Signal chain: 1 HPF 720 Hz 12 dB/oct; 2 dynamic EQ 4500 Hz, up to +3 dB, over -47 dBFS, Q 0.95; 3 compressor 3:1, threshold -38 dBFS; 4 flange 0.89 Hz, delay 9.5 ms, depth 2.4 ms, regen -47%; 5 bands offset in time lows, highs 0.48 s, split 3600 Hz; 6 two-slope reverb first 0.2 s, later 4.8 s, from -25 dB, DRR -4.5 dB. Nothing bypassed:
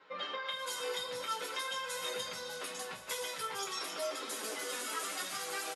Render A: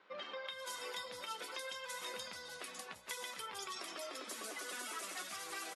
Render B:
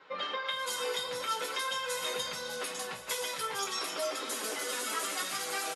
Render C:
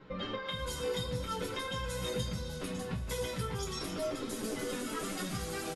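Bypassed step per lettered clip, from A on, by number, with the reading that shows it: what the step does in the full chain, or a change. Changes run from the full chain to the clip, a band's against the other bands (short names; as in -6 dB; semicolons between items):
6, crest factor change +3.0 dB; 4, loudness change +4.0 LU; 1, 125 Hz band +26.5 dB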